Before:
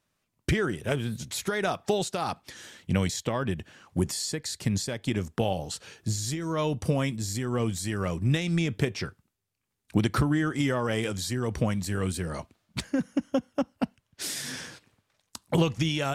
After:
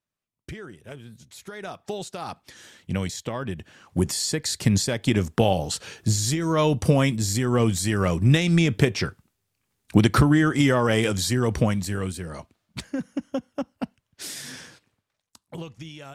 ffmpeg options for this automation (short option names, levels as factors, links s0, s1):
-af "volume=2.24,afade=t=in:st=1.31:d=1.36:silence=0.281838,afade=t=in:st=3.54:d=0.95:silence=0.375837,afade=t=out:st=11.41:d=0.75:silence=0.354813,afade=t=out:st=14.44:d=1.02:silence=0.281838"